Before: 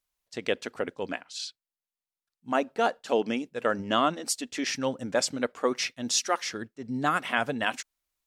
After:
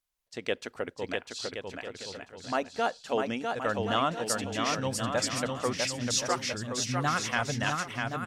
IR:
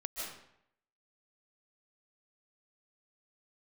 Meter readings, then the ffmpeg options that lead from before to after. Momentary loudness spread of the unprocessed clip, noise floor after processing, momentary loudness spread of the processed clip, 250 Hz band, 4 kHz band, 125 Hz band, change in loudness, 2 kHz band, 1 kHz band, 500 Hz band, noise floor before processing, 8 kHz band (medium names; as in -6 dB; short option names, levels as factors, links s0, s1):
10 LU, -63 dBFS, 11 LU, -2.5 dB, -0.5 dB, +7.0 dB, -1.5 dB, -1.0 dB, -1.0 dB, -2.5 dB, under -85 dBFS, -0.5 dB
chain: -af "aecho=1:1:650|1072|1347|1526|1642:0.631|0.398|0.251|0.158|0.1,asubboost=boost=7.5:cutoff=110,volume=0.75"